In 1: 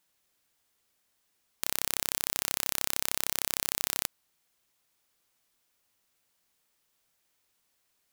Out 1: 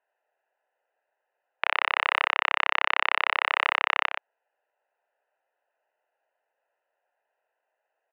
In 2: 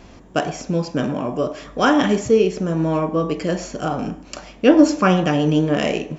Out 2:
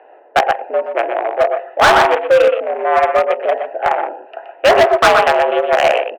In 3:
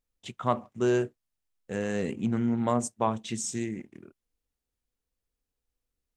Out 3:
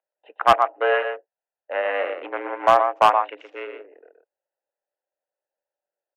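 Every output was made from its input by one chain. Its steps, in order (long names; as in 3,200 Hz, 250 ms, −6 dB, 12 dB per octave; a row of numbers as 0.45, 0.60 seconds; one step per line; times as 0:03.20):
adaptive Wiener filter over 41 samples
single-sideband voice off tune +80 Hz 530–2,600 Hz
on a send: single-tap delay 122 ms −7.5 dB
on the sum: gain into a clipping stage and back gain 21.5 dB
normalise the peak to −6 dBFS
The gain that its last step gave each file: +16.5, +15.5, +15.5 decibels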